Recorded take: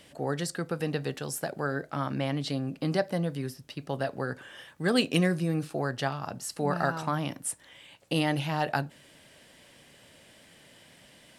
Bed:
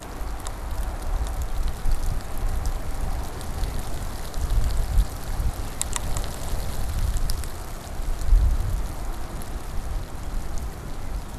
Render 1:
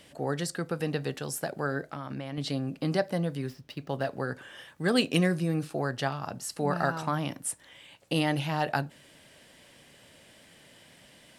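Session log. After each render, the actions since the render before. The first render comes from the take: 1.91–2.38 compressor, threshold -32 dBFS; 3.47–4.08 median filter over 5 samples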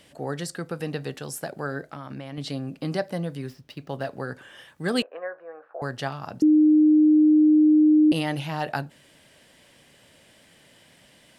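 5.02–5.82 Chebyshev band-pass 520–1600 Hz, order 3; 6.42–8.12 bleep 306 Hz -13 dBFS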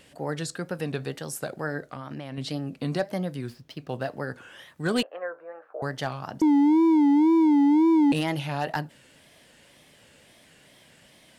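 wow and flutter 130 cents; hard clip -17 dBFS, distortion -15 dB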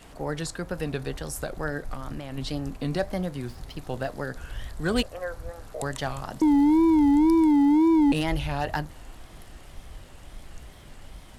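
add bed -14 dB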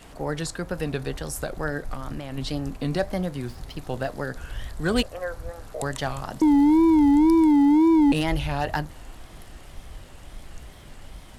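gain +2 dB

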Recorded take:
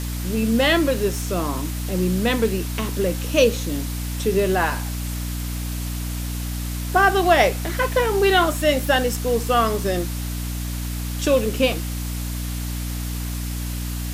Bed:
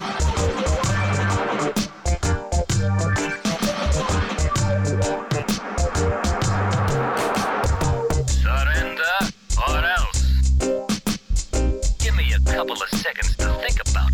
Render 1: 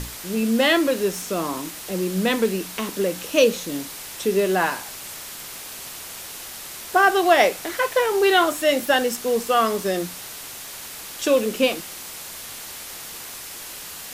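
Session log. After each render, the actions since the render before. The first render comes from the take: notches 60/120/180/240/300 Hz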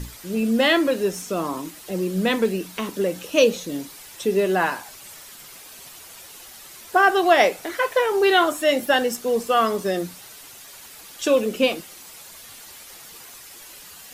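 denoiser 9 dB, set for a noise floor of -37 dBFS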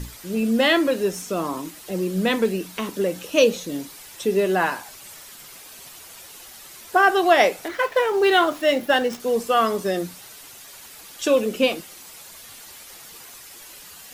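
7.68–9.2 median filter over 5 samples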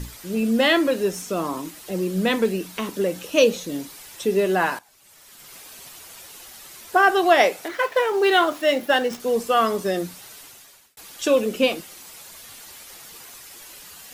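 4.79–5.56 fade in quadratic, from -16 dB; 7.42–9.11 low shelf 110 Hz -11 dB; 10.39–10.97 fade out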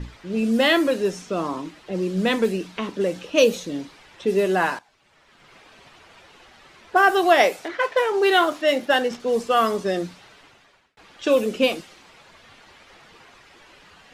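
low-pass opened by the level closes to 2400 Hz, open at -14 dBFS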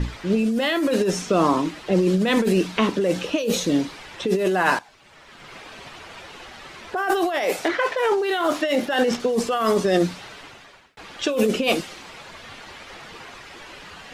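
in parallel at -1 dB: limiter -16.5 dBFS, peak gain reduction 11.5 dB; on the sum: negative-ratio compressor -20 dBFS, ratio -1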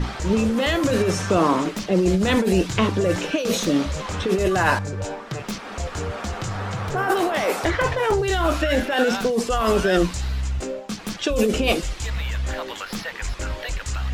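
add bed -7.5 dB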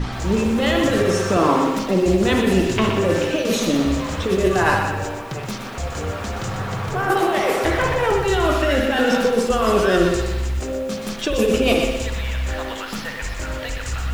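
spring tank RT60 1.2 s, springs 57 ms, chirp 45 ms, DRR 3.5 dB; lo-fi delay 0.122 s, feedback 35%, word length 7-bit, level -7 dB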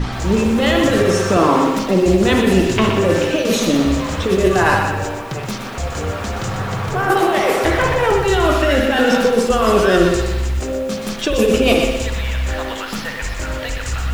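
gain +3.5 dB; limiter -1 dBFS, peak gain reduction 1.5 dB

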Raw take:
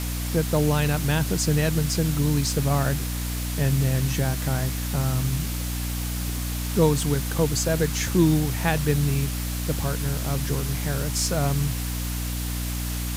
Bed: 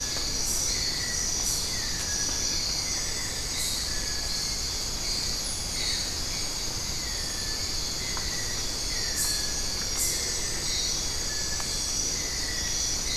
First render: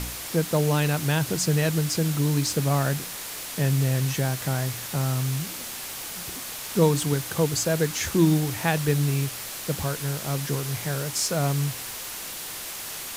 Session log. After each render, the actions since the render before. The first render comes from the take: de-hum 60 Hz, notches 5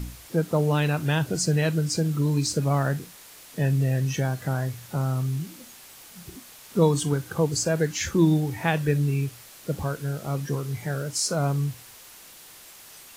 noise print and reduce 12 dB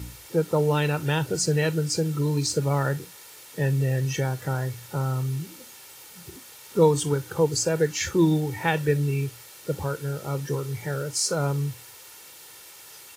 HPF 88 Hz; comb 2.2 ms, depth 51%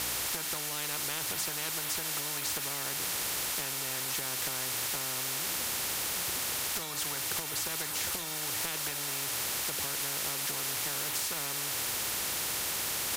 compressor, threshold -29 dBFS, peak gain reduction 15.5 dB; spectral compressor 10:1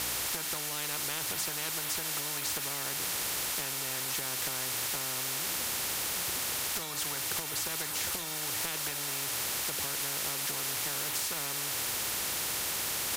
nothing audible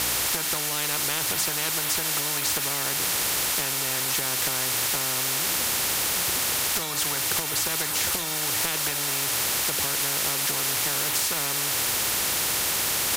gain +8 dB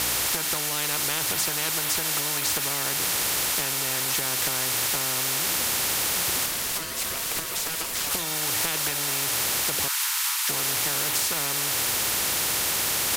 6.46–8.11 ring modulator 810 Hz; 9.88–10.49 steep high-pass 860 Hz 96 dB/oct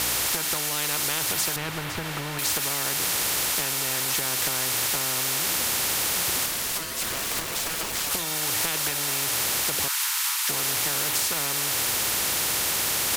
1.56–2.39 tone controls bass +8 dB, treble -14 dB; 7.02–8 level-crossing sampler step -26.5 dBFS

